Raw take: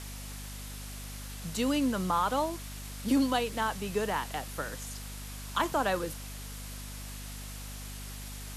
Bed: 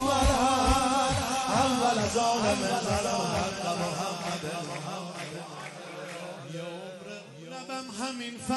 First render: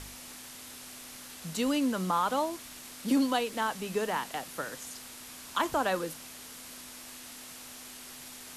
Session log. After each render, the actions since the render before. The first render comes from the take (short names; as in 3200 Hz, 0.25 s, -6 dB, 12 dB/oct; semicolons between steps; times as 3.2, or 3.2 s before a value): de-hum 50 Hz, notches 4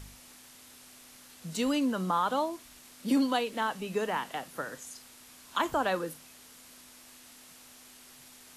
noise print and reduce 7 dB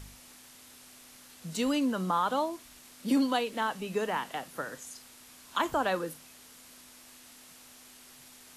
nothing audible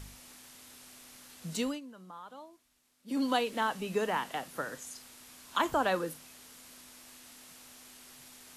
1.55–3.32 dip -19.5 dB, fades 0.26 s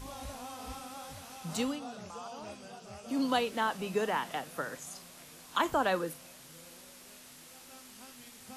add bed -20 dB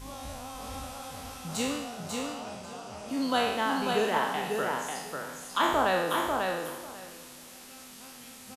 spectral trails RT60 0.96 s; feedback echo 0.544 s, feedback 16%, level -4 dB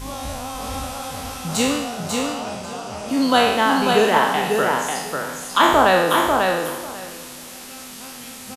gain +11 dB